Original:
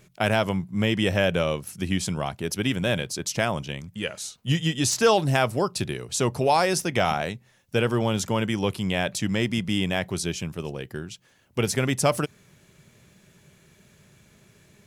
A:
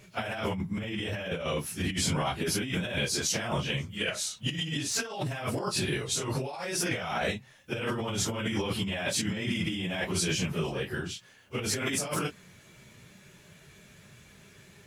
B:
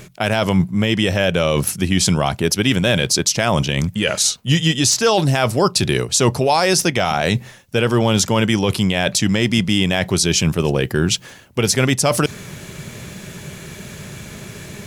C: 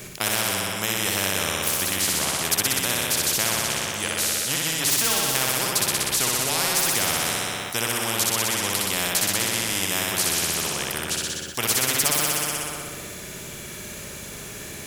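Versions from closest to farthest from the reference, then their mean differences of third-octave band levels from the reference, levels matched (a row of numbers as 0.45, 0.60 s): B, A, C; 4.0, 7.5, 15.0 dB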